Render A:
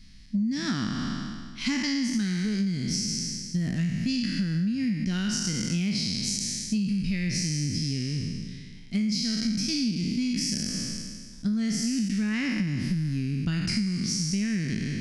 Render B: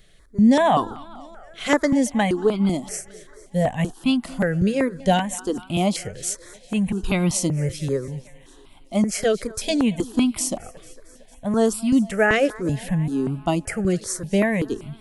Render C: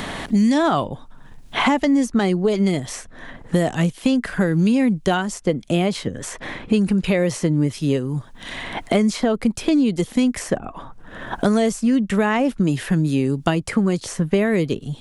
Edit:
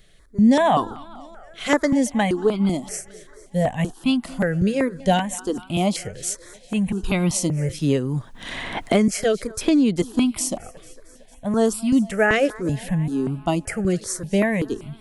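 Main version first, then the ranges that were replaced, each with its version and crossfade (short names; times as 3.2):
B
7.79–9.08 from C
9.61–10.02 from C
not used: A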